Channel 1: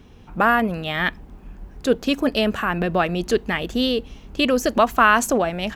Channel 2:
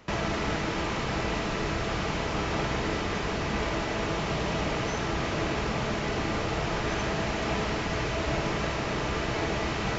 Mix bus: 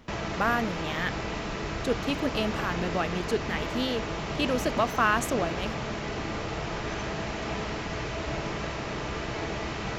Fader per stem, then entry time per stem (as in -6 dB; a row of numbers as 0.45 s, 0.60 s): -9.0 dB, -3.5 dB; 0.00 s, 0.00 s